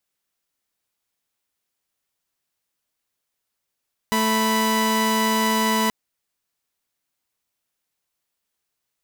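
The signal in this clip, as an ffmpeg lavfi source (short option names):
-f lavfi -i "aevalsrc='0.119*((2*mod(220*t,1)-1)+(2*mod(987.77*t,1)-1))':d=1.78:s=44100"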